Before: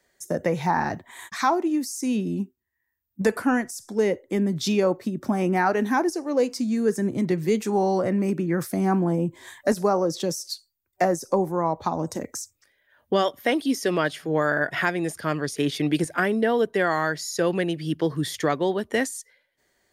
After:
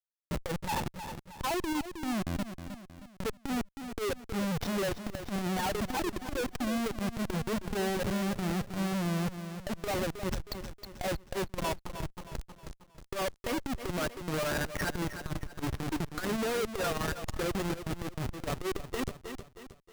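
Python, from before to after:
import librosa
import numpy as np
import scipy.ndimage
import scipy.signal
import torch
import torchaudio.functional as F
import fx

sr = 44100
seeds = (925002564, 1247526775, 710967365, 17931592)

p1 = fx.bin_expand(x, sr, power=2.0)
p2 = fx.high_shelf(p1, sr, hz=2200.0, db=-4.5)
p3 = fx.schmitt(p2, sr, flips_db=-32.5)
p4 = p3 + fx.echo_feedback(p3, sr, ms=315, feedback_pct=41, wet_db=-10, dry=0)
y = fx.transformer_sat(p4, sr, knee_hz=88.0)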